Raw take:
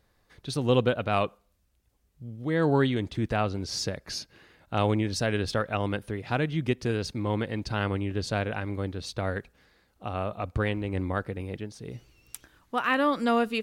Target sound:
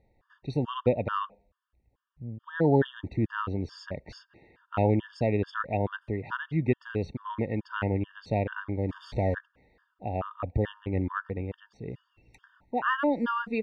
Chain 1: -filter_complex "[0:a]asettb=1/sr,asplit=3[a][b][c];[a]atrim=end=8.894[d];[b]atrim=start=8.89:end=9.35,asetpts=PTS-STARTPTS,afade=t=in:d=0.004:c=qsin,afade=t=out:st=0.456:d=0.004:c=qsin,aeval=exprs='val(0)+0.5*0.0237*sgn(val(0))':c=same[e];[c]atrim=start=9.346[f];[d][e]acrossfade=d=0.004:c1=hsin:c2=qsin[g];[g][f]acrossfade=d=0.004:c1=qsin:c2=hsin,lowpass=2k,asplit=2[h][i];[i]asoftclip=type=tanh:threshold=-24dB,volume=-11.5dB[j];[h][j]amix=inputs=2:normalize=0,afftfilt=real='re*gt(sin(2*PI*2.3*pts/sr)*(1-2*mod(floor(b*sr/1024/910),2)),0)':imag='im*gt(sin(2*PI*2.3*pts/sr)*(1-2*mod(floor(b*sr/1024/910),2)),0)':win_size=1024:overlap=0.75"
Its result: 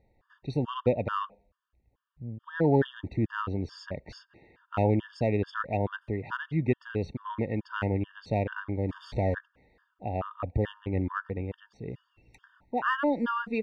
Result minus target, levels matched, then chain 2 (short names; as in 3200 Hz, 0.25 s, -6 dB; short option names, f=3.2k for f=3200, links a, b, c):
soft clip: distortion +14 dB
-filter_complex "[0:a]asettb=1/sr,asplit=3[a][b][c];[a]atrim=end=8.894[d];[b]atrim=start=8.89:end=9.35,asetpts=PTS-STARTPTS,afade=t=in:d=0.004:c=qsin,afade=t=out:st=0.456:d=0.004:c=qsin,aeval=exprs='val(0)+0.5*0.0237*sgn(val(0))':c=same[e];[c]atrim=start=9.346[f];[d][e]acrossfade=d=0.004:c1=hsin:c2=qsin[g];[g][f]acrossfade=d=0.004:c1=qsin:c2=hsin,lowpass=2k,asplit=2[h][i];[i]asoftclip=type=tanh:threshold=-13dB,volume=-11.5dB[j];[h][j]amix=inputs=2:normalize=0,afftfilt=real='re*gt(sin(2*PI*2.3*pts/sr)*(1-2*mod(floor(b*sr/1024/910),2)),0)':imag='im*gt(sin(2*PI*2.3*pts/sr)*(1-2*mod(floor(b*sr/1024/910),2)),0)':win_size=1024:overlap=0.75"